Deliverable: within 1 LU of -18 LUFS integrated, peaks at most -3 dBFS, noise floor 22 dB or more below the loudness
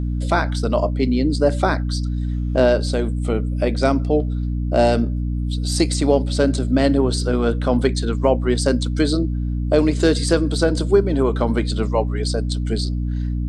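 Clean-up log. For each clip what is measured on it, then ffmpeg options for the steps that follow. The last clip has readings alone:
hum 60 Hz; harmonics up to 300 Hz; hum level -20 dBFS; loudness -20.0 LUFS; peak -3.0 dBFS; loudness target -18.0 LUFS
-> -af "bandreject=f=60:t=h:w=4,bandreject=f=120:t=h:w=4,bandreject=f=180:t=h:w=4,bandreject=f=240:t=h:w=4,bandreject=f=300:t=h:w=4"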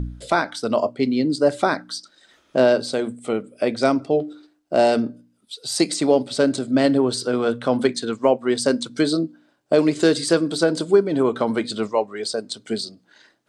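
hum none; loudness -21.0 LUFS; peak -4.5 dBFS; loudness target -18.0 LUFS
-> -af "volume=3dB,alimiter=limit=-3dB:level=0:latency=1"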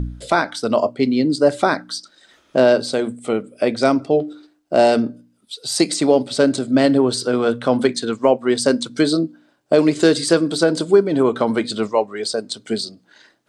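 loudness -18.5 LUFS; peak -3.0 dBFS; noise floor -60 dBFS

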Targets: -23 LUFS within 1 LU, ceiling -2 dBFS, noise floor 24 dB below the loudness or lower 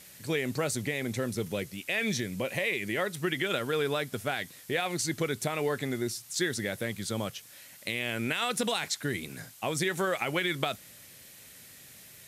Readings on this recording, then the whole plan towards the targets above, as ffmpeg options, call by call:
noise floor -52 dBFS; noise floor target -56 dBFS; loudness -31.5 LUFS; peak -14.0 dBFS; loudness target -23.0 LUFS
-> -af "afftdn=nr=6:nf=-52"
-af "volume=8.5dB"

